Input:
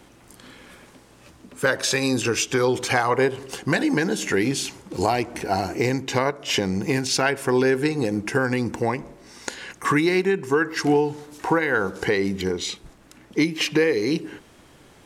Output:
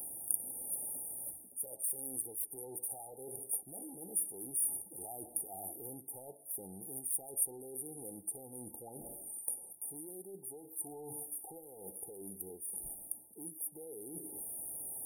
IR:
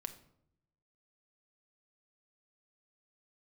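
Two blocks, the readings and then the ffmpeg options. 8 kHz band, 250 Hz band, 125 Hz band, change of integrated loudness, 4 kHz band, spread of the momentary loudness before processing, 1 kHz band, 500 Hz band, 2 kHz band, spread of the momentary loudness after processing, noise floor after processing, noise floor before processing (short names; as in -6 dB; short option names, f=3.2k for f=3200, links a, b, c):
-4.5 dB, -28.0 dB, -29.0 dB, -17.0 dB, under -40 dB, 9 LU, -28.0 dB, -27.5 dB, under -40 dB, 11 LU, -57 dBFS, -52 dBFS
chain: -af "asoftclip=type=tanh:threshold=-17.5dB,lowshelf=f=460:g=-11,areverse,acompressor=threshold=-46dB:ratio=6,areverse,afftfilt=real='re*(1-between(b*sr/4096,890,8900))':imag='im*(1-between(b*sr/4096,890,8900))':win_size=4096:overlap=0.75,aexciter=amount=14.3:drive=6:freq=5.1k,volume=-1.5dB"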